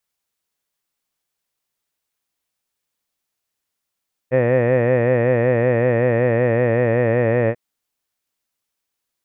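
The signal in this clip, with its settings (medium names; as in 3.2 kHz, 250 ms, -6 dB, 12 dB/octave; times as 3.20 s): formant-synthesis vowel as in head, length 3.24 s, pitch 124 Hz, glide -1 st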